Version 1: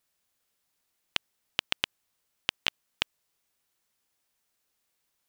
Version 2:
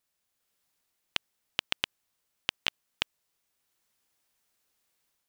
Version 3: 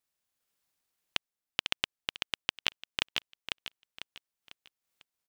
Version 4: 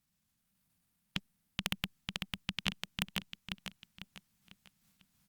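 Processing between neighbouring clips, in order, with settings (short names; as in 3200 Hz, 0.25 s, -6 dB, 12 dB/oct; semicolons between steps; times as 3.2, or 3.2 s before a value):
AGC gain up to 5 dB; gain -3.5 dB
on a send: feedback echo 0.498 s, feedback 37%, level -6.5 dB; on the sum: transient shaper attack +7 dB, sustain -10 dB; maximiser +0.5 dB; gain -5 dB
resonant low shelf 280 Hz +12.5 dB, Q 3; transient shaper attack -10 dB, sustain +9 dB; gain +3 dB; Opus 48 kbps 48000 Hz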